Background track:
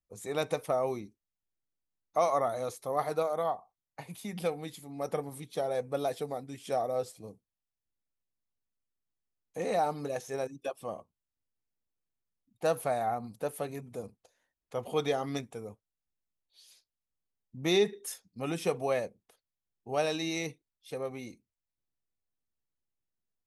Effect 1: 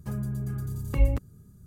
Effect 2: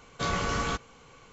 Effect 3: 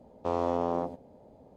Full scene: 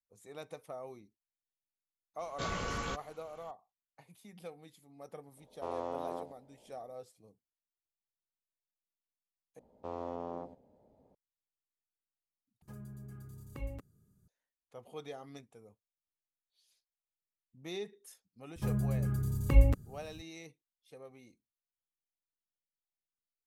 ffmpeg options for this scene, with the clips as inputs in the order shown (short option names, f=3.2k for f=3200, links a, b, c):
-filter_complex "[3:a]asplit=2[a][b];[1:a]asplit=2[c][d];[0:a]volume=-15dB[e];[a]equalizer=f=120:w=0.6:g=-10[f];[b]highshelf=f=4.6k:g=-4.5[g];[c]lowshelf=f=120:g=-7.5[h];[e]asplit=3[i][j][k];[i]atrim=end=9.594[l];[g]atrim=end=1.56,asetpts=PTS-STARTPTS,volume=-11.5dB[m];[j]atrim=start=11.146:end=12.624[n];[h]atrim=end=1.66,asetpts=PTS-STARTPTS,volume=-13.5dB[o];[k]atrim=start=14.276[p];[2:a]atrim=end=1.32,asetpts=PTS-STARTPTS,volume=-8dB,afade=t=in:d=0.004:c=hsin,afade=t=out:st=1.316:d=0.004:c=hsin,adelay=2190[q];[f]atrim=end=1.56,asetpts=PTS-STARTPTS,volume=-8dB,afade=t=in:d=0.004:c=hsin,afade=t=out:st=1.556:d=0.004:c=hsin,adelay=236817S[r];[d]atrim=end=1.66,asetpts=PTS-STARTPTS,volume=-0.5dB,afade=t=in:d=0.004:c=hsin,afade=t=out:st=1.656:d=0.004:c=hsin,adelay=18560[s];[l][m]acrossfade=d=0.004:c1=hsin:c2=hsin[t];[t][n]acrossfade=d=0.004:c1=hsin:c2=hsin[u];[u][o]acrossfade=d=0.004:c1=hsin:c2=hsin[v];[v][p]acrossfade=d=0.004:c1=hsin:c2=hsin[w];[w][q][r][s]amix=inputs=4:normalize=0"